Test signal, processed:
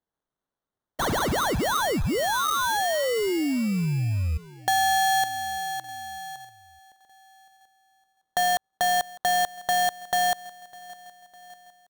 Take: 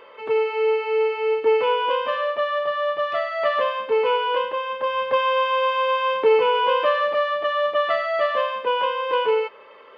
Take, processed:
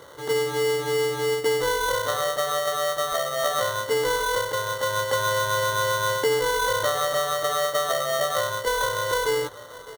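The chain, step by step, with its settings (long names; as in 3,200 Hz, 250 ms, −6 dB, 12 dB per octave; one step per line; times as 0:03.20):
repeating echo 604 ms, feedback 54%, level −22.5 dB
sample-rate reduction 2,500 Hz, jitter 0%
downward compressor 3 to 1, threshold −21 dBFS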